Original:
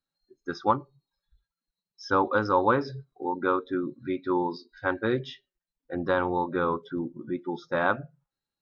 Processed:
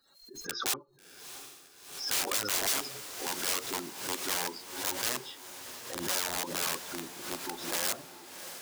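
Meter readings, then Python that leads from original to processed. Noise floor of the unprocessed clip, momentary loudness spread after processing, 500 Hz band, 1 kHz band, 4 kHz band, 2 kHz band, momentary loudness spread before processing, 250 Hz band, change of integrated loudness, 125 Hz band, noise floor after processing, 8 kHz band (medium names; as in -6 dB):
under -85 dBFS, 16 LU, -13.5 dB, -11.5 dB, +11.5 dB, -5.0 dB, 11 LU, -13.5 dB, -4.0 dB, -14.5 dB, -58 dBFS, no reading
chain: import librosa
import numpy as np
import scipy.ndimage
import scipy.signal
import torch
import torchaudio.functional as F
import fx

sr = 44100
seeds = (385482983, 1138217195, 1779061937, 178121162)

y = fx.spec_quant(x, sr, step_db=30)
y = (np.mod(10.0 ** (22.5 / 20.0) * y + 1.0, 2.0) - 1.0) / 10.0 ** (22.5 / 20.0)
y = fx.bass_treble(y, sr, bass_db=-11, treble_db=9)
y = fx.echo_diffused(y, sr, ms=669, feedback_pct=51, wet_db=-11)
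y = fx.pre_swell(y, sr, db_per_s=79.0)
y = y * 10.0 ** (-6.5 / 20.0)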